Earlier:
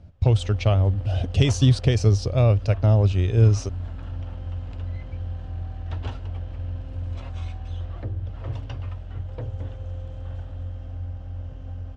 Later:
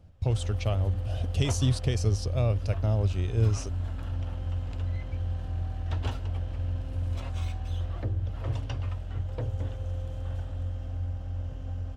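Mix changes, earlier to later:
speech -8.5 dB; master: remove distance through air 82 m

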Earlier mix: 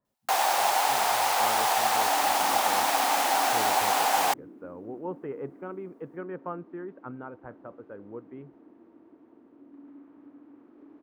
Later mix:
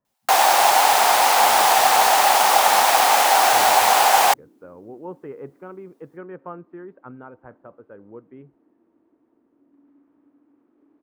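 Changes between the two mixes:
first sound +9.0 dB; second sound -8.5 dB

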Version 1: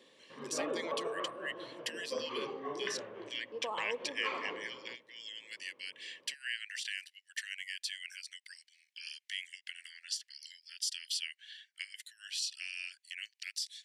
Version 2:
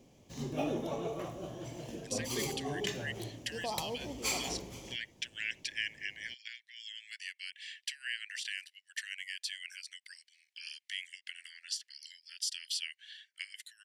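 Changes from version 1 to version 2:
speech: entry +1.60 s; background: remove cabinet simulation 390–2700 Hz, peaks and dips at 500 Hz +6 dB, 740 Hz -10 dB, 1.1 kHz +10 dB, 1.6 kHz +6 dB, 2.4 kHz -4 dB

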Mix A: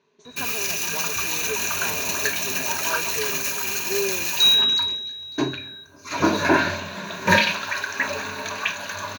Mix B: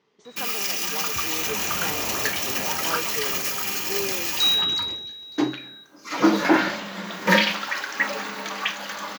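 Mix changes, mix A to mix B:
first sound: add high-pass 170 Hz 24 dB/octave; second sound +4.0 dB; master: remove rippled EQ curve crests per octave 1.5, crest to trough 10 dB

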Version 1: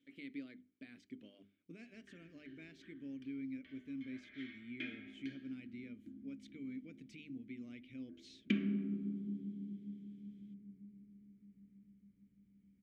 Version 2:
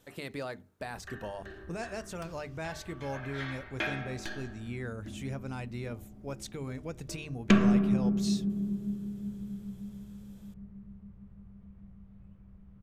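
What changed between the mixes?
background: entry -1.00 s; master: remove vowel filter i

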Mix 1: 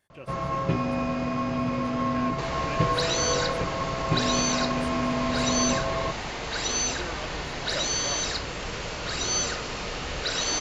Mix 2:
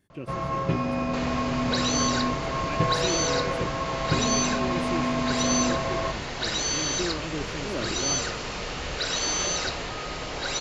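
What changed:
speech: add resonant low shelf 450 Hz +10.5 dB, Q 1.5; second sound: entry -1.25 s

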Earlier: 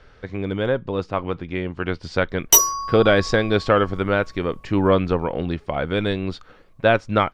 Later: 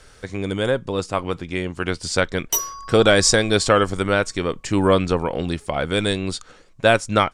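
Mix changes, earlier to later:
speech: remove distance through air 260 m; background -9.0 dB

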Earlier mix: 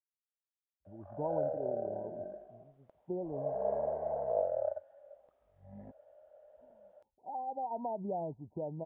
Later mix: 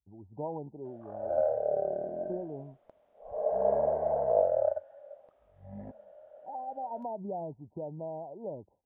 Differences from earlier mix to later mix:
speech: entry -0.80 s; background +6.5 dB

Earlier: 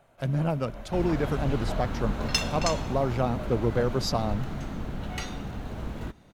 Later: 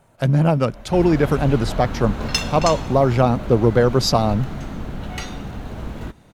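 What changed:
speech +10.5 dB; second sound +4.5 dB

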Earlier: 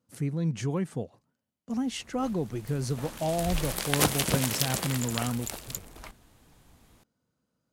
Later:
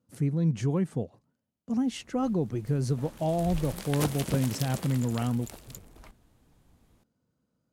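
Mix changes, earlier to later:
background -6.5 dB; master: add tilt shelf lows +3.5 dB, about 660 Hz

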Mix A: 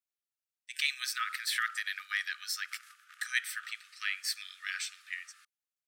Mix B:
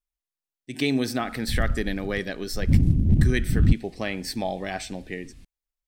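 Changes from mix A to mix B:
background: add high-order bell 770 Hz -16 dB 2.4 oct; master: remove Chebyshev high-pass 1.2 kHz, order 10

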